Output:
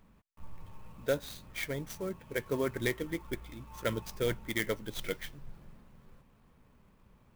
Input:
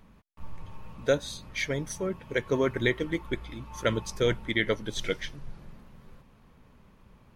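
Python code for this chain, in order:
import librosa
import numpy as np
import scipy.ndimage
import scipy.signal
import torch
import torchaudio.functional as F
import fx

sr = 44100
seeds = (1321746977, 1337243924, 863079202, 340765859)

y = fx.clock_jitter(x, sr, seeds[0], jitter_ms=0.029)
y = y * 10.0 ** (-6.0 / 20.0)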